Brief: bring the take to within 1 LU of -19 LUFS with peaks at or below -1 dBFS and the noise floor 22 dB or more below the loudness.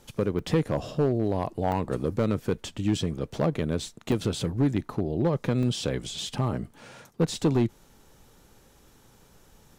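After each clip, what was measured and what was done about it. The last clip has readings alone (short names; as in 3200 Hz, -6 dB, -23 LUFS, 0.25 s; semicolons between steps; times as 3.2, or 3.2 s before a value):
clipped 0.7%; flat tops at -16.0 dBFS; dropouts 5; longest dropout 1.4 ms; loudness -28.0 LUFS; peak -16.0 dBFS; loudness target -19.0 LUFS
-> clip repair -16 dBFS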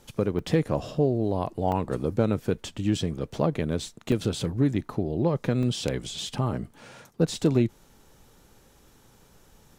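clipped 0.0%; dropouts 5; longest dropout 1.4 ms
-> interpolate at 0.39/1.72/4.12/5.63/6.19, 1.4 ms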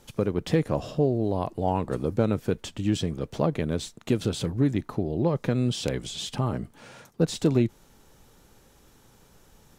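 dropouts 0; loudness -27.5 LUFS; peak -7.5 dBFS; loudness target -19.0 LUFS
-> gain +8.5 dB; limiter -1 dBFS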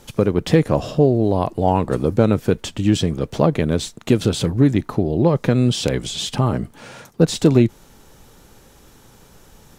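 loudness -19.0 LUFS; peak -1.0 dBFS; noise floor -49 dBFS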